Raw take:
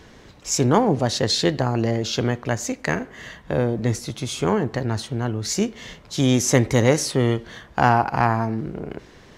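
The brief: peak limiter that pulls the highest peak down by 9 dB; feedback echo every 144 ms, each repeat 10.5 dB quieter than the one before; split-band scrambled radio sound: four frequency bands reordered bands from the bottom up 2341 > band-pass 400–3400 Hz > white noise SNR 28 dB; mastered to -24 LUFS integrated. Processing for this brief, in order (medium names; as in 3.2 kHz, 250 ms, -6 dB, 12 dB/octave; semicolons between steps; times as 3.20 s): peak limiter -10 dBFS; feedback delay 144 ms, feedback 30%, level -10.5 dB; four frequency bands reordered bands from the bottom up 2341; band-pass 400–3400 Hz; white noise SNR 28 dB; trim +2.5 dB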